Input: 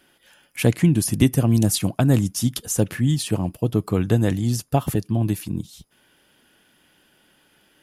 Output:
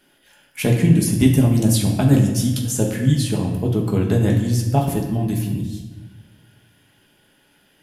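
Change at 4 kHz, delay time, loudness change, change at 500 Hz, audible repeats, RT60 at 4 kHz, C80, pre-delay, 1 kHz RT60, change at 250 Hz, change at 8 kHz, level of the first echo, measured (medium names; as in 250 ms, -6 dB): +1.0 dB, no echo, +2.5 dB, +2.0 dB, no echo, 0.95 s, 7.0 dB, 5 ms, 1.1 s, +3.0 dB, +0.5 dB, no echo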